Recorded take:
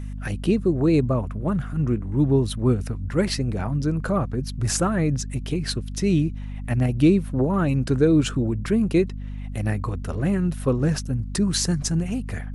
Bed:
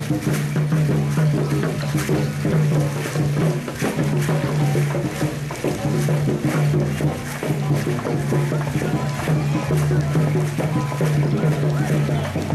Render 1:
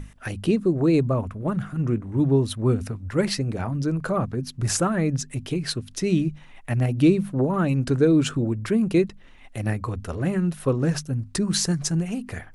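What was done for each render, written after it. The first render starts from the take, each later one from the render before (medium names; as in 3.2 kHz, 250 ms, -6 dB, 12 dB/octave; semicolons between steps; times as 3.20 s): hum notches 50/100/150/200/250 Hz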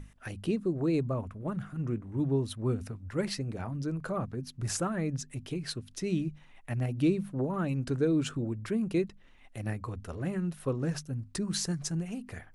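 trim -9 dB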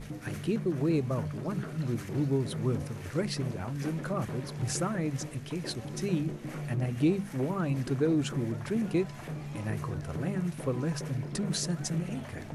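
add bed -19 dB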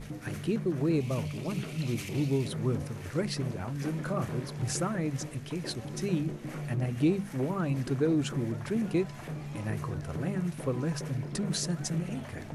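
1.00–2.48 s: resonant high shelf 2 kHz +6.5 dB, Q 3; 3.90–4.46 s: doubling 33 ms -8 dB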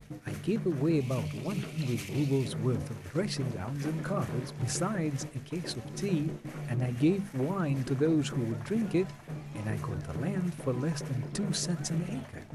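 expander -35 dBFS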